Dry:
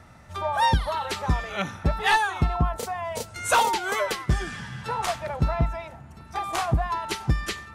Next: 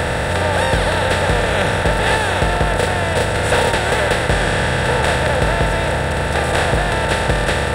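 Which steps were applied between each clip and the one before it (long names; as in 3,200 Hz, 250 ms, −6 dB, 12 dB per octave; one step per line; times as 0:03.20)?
compressor on every frequency bin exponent 0.2
thirty-one-band graphic EQ 315 Hz +4 dB, 500 Hz +11 dB, 1,000 Hz −10 dB, 6,300 Hz −8 dB, 12,500 Hz −10 dB
level −1 dB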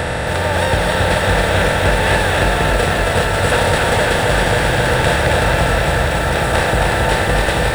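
feedback echo at a low word length 271 ms, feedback 80%, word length 6 bits, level −3.5 dB
level −1 dB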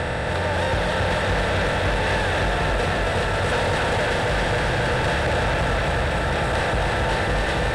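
hard clipping −13 dBFS, distortion −11 dB
high-frequency loss of the air 58 metres
level −4.5 dB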